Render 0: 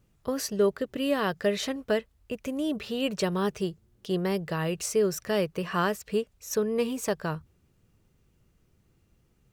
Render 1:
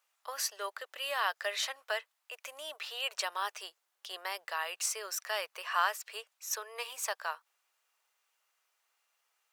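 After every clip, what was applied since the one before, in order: inverse Chebyshev high-pass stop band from 230 Hz, stop band 60 dB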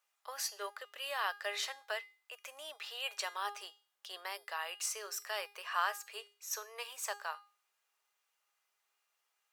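feedback comb 410 Hz, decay 0.38 s, harmonics all, mix 70%; trim +5.5 dB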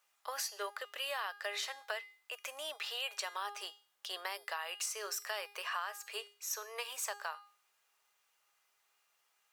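compression 6:1, threshold -41 dBFS, peak gain reduction 13.5 dB; trim +5.5 dB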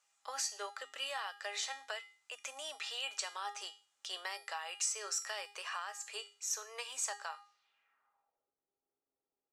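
feedback comb 270 Hz, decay 0.33 s, harmonics odd, mix 80%; low-pass sweep 7.5 kHz -> 370 Hz, 7.40–8.53 s; trim +9.5 dB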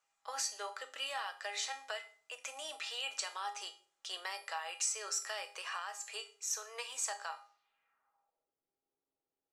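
simulated room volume 560 m³, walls furnished, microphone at 0.64 m; tape noise reduction on one side only decoder only

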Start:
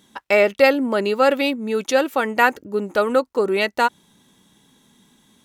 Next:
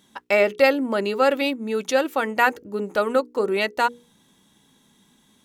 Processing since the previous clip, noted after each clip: hum notches 60/120/180/240/300/360/420/480 Hz; trim -2.5 dB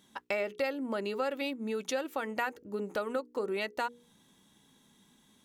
compression 3:1, threshold -27 dBFS, peak gain reduction 12 dB; trim -5 dB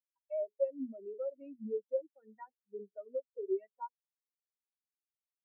saturation -27 dBFS, distortion -15 dB; spectral contrast expander 4:1; trim +5 dB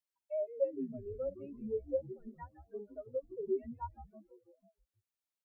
frequency-shifting echo 163 ms, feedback 62%, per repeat -150 Hz, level -13 dB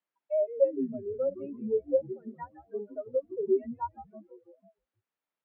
band-pass 180–2000 Hz; trim +8.5 dB

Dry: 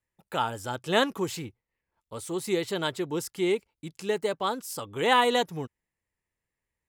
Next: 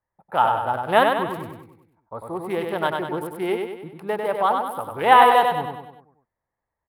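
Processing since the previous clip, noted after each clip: local Wiener filter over 15 samples; FFT filter 420 Hz 0 dB, 750 Hz +12 dB, 3 kHz +1 dB, 7.1 kHz -18 dB, 10 kHz +9 dB; feedback delay 97 ms, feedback 50%, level -4.5 dB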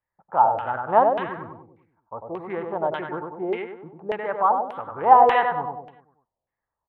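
LFO low-pass saw down 1.7 Hz 570–2700 Hz; trim -5 dB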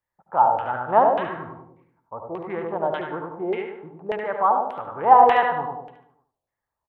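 feedback delay 73 ms, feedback 29%, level -8.5 dB

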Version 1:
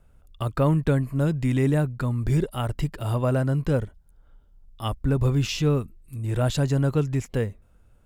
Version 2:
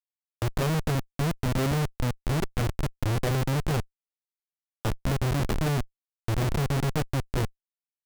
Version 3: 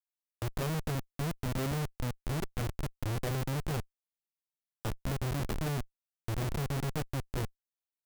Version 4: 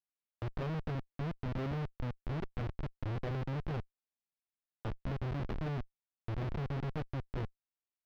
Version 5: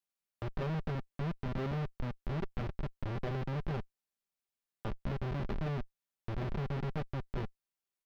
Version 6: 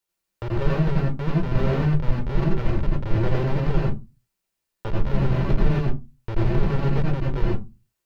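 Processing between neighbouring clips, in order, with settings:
Schmitt trigger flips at -22 dBFS
treble shelf 10 kHz +5.5 dB; trim -7.5 dB
distance through air 270 m; trim -3 dB
comb 5.1 ms, depth 33%; trim +1 dB
reverberation RT60 0.25 s, pre-delay 81 ms, DRR -1.5 dB; trim +7 dB

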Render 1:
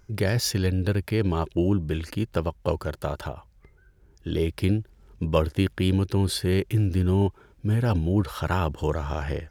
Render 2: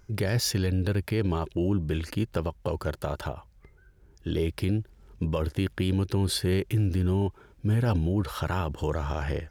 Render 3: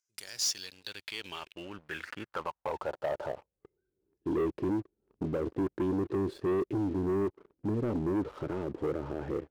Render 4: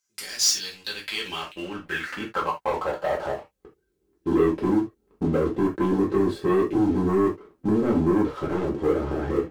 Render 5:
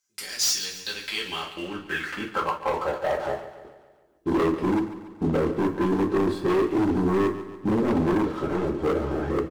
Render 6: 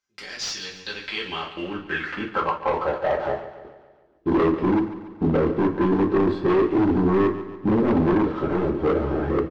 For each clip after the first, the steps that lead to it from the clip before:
peak limiter -17 dBFS, peak gain reduction 10 dB
band-pass sweep 7.2 kHz -> 350 Hz, 0.26–3.77 s; waveshaping leveller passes 3; trim -4.5 dB
gated-style reverb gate 100 ms falling, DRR -3.5 dB; trim +5 dB
wavefolder -17 dBFS; on a send: feedback delay 142 ms, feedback 54%, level -13 dB
distance through air 200 m; trim +3.5 dB

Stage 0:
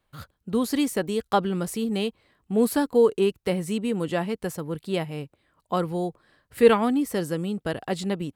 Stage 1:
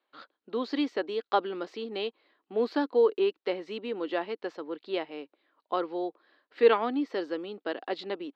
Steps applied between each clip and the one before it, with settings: elliptic band-pass 300–4300 Hz, stop band 40 dB; trim -3 dB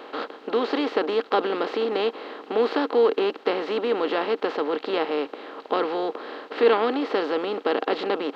spectral levelling over time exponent 0.4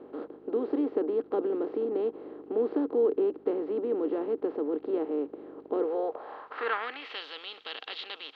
mains buzz 50 Hz, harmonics 8, -51 dBFS -1 dB/octave; band-pass sweep 330 Hz -> 3.4 kHz, 5.70–7.23 s

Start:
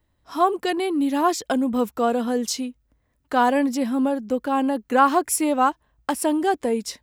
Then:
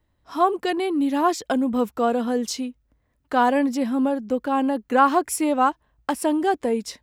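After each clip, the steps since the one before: treble shelf 5.6 kHz -5.5 dB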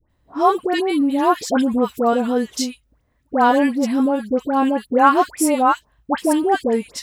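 phase dispersion highs, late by 98 ms, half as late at 1.3 kHz; trim +4 dB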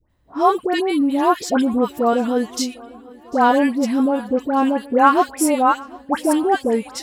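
shuffle delay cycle 1246 ms, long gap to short 1.5:1, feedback 44%, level -23.5 dB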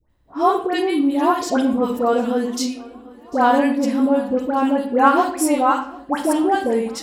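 reverberation RT60 0.55 s, pre-delay 32 ms, DRR 6.5 dB; trim -1.5 dB

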